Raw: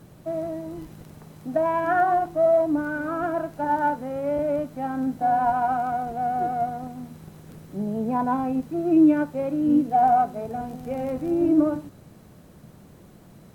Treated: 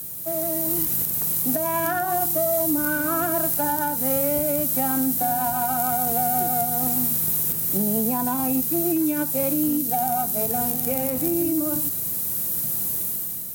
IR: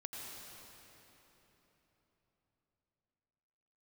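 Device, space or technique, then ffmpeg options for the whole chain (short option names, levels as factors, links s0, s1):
FM broadcast chain: -filter_complex "[0:a]highpass=60,dynaudnorm=f=190:g=7:m=2.99,acrossover=split=230|2900[s0][s1][s2];[s0]acompressor=threshold=0.0708:ratio=4[s3];[s1]acompressor=threshold=0.0708:ratio=4[s4];[s2]acompressor=threshold=0.00316:ratio=4[s5];[s3][s4][s5]amix=inputs=3:normalize=0,aemphasis=mode=production:type=75fm,alimiter=limit=0.158:level=0:latency=1:release=247,asoftclip=type=hard:threshold=0.133,lowpass=f=15000:w=0.5412,lowpass=f=15000:w=1.3066,aemphasis=mode=production:type=75fm"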